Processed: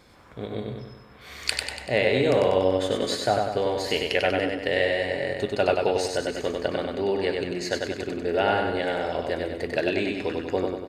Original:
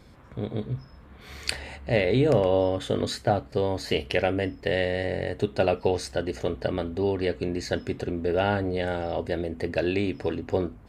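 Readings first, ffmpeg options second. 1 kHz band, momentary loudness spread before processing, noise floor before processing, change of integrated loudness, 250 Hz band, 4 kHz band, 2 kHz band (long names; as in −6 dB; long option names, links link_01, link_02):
+3.0 dB, 9 LU, −50 dBFS, +1.5 dB, −1.0 dB, +4.5 dB, +4.5 dB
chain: -filter_complex "[0:a]lowshelf=frequency=280:gain=-11.5,asplit=2[link_01][link_02];[link_02]aecho=0:1:96|192|288|384|480|576|672:0.668|0.341|0.174|0.0887|0.0452|0.0231|0.0118[link_03];[link_01][link_03]amix=inputs=2:normalize=0,volume=2.5dB"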